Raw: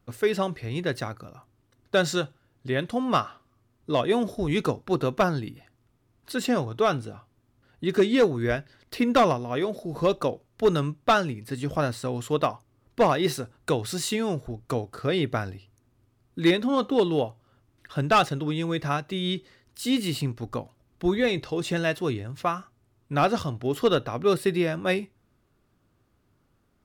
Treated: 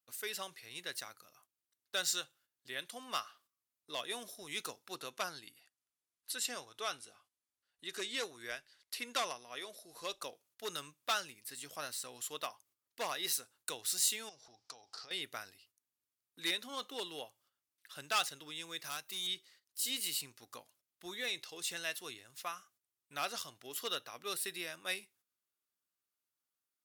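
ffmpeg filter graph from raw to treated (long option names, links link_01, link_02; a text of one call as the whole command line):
ffmpeg -i in.wav -filter_complex "[0:a]asettb=1/sr,asplit=3[link_01][link_02][link_03];[link_01]atrim=end=4.964[link_04];[link_02]atrim=start=4.96:end=10.23,asetpts=PTS-STARTPTS,afade=type=in:duration=0.004:curve=qsin,afade=type=out:start_time=5.266:duration=0.004:curve=qsin,lowpass=frequency=12000:width=0.5412,lowpass=frequency=12000:width=1.3066,asubboost=boost=7:cutoff=52[link_05];[link_03]atrim=start=10.226[link_06];[link_04][link_05]acrossfade=duration=0.004:curve1=hsin:curve2=qsin[link_07];[link_07][link_06]acrossfade=duration=0.004:curve1=qsin:curve2=hsin,asettb=1/sr,asplit=3[link_08][link_09][link_10];[link_08]atrim=end=14.294[link_11];[link_09]atrim=start=14.29:end=15.11,asetpts=PTS-STARTPTS,afade=type=in:duration=0.004:curve=qsin,afade=type=out:start_time=0.816:duration=0.004:curve=qsin,equalizer=frequency=810:width=3.6:gain=12,acompressor=threshold=-34dB:ratio=12:attack=3.2:release=140:knee=1:detection=peak,lowpass=frequency=5200:width_type=q:width=4.8[link_12];[link_10]atrim=start=15.106[link_13];[link_11][link_12]acrossfade=duration=0.004:curve1=hsin:curve2=qsin[link_14];[link_14][link_13]acrossfade=duration=0.004:curve1=qsin:curve2=hsin,asettb=1/sr,asplit=3[link_15][link_16][link_17];[link_15]atrim=end=18.844[link_18];[link_16]atrim=start=18.84:end=19.27,asetpts=PTS-STARTPTS,afade=type=in:duration=0.004:curve=qsin,afade=type=out:start_time=0.426:duration=0.004:curve=qsin,highshelf=frequency=9800:gain=12,asoftclip=type=hard:threshold=-22.5dB[link_19];[link_17]atrim=start=19.266[link_20];[link_18][link_19]acrossfade=duration=0.004:curve1=hsin:curve2=qsin[link_21];[link_21][link_20]acrossfade=duration=0.004:curve1=qsin:curve2=hsin,agate=range=-10dB:threshold=-53dB:ratio=16:detection=peak,aderivative,volume=1dB" out.wav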